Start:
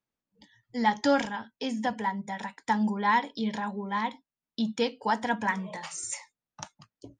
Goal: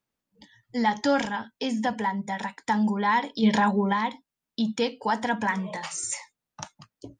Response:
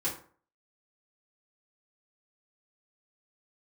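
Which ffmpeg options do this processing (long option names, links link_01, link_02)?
-filter_complex "[0:a]asplit=2[link_01][link_02];[link_02]alimiter=limit=-24dB:level=0:latency=1:release=62,volume=2dB[link_03];[link_01][link_03]amix=inputs=2:normalize=0,asplit=3[link_04][link_05][link_06];[link_04]afade=type=out:start_time=3.42:duration=0.02[link_07];[link_05]acontrast=77,afade=type=in:start_time=3.42:duration=0.02,afade=type=out:start_time=3.92:duration=0.02[link_08];[link_06]afade=type=in:start_time=3.92:duration=0.02[link_09];[link_07][link_08][link_09]amix=inputs=3:normalize=0,volume=-2.5dB"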